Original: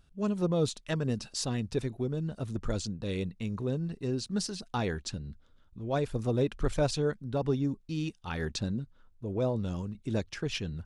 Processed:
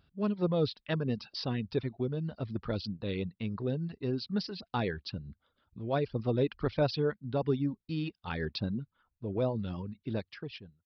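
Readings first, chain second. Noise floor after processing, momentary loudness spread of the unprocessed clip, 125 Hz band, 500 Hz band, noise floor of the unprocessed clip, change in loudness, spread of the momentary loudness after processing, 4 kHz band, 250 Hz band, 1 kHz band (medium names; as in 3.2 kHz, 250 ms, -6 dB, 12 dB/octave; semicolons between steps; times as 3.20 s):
-83 dBFS, 7 LU, -2.0 dB, -0.5 dB, -61 dBFS, -1.0 dB, 10 LU, -2.0 dB, -1.0 dB, -0.5 dB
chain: fade out at the end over 0.96 s; high-pass 72 Hz; resampled via 11.025 kHz; reverb removal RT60 0.54 s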